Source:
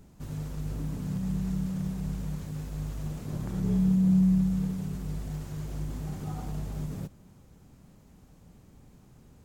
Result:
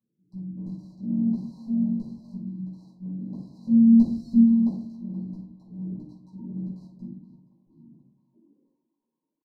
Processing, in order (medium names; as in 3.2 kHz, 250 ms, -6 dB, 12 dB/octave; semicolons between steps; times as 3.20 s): spectral gate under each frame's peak -15 dB strong; dynamic bell 100 Hz, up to -7 dB, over -48 dBFS, Q 2.5; in parallel at -10 dB: bit crusher 5-bit; on the sum: high-pass sweep 110 Hz -> 1 kHz, 8.02–8.92 s; pitch shift +3.5 st; LFO band-pass square 1.5 Hz 270–2900 Hz; brick-wall FIR band-stop 1.1–3.9 kHz; on a send: band-passed feedback delay 474 ms, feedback 81%, band-pass 1.5 kHz, level -12 dB; on the sum: simulated room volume 470 m³, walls furnished, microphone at 6.7 m; trim -8.5 dB